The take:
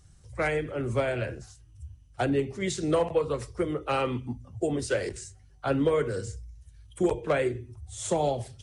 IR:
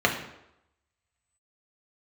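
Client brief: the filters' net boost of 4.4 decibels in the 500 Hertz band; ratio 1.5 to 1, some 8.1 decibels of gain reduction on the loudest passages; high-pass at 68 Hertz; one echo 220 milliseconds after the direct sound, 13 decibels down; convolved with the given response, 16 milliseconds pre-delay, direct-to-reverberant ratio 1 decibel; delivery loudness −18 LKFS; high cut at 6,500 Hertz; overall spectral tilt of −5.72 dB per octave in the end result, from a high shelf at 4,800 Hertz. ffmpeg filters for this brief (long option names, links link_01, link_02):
-filter_complex "[0:a]highpass=68,lowpass=6500,equalizer=frequency=500:width_type=o:gain=5,highshelf=frequency=4800:gain=3,acompressor=threshold=-39dB:ratio=1.5,aecho=1:1:220:0.224,asplit=2[link_01][link_02];[1:a]atrim=start_sample=2205,adelay=16[link_03];[link_02][link_03]afir=irnorm=-1:irlink=0,volume=-17dB[link_04];[link_01][link_04]amix=inputs=2:normalize=0,volume=12dB"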